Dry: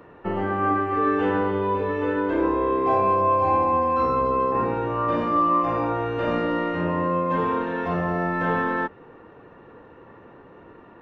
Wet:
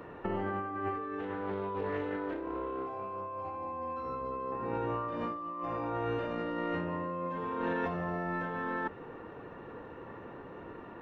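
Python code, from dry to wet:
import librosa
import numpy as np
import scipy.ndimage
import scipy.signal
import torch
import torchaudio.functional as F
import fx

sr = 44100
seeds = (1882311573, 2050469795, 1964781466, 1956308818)

y = fx.over_compress(x, sr, threshold_db=-30.0, ratio=-1.0)
y = fx.doppler_dist(y, sr, depth_ms=0.23, at=(1.2, 3.55))
y = F.gain(torch.from_numpy(y), -6.0).numpy()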